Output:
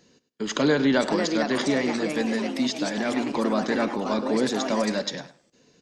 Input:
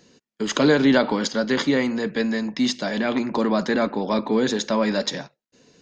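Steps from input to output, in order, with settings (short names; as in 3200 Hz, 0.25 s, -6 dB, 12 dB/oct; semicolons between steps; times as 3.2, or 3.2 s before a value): echoes that change speed 0.606 s, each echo +3 st, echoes 3, each echo -6 dB; feedback echo 0.102 s, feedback 17%, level -15 dB; gain -4 dB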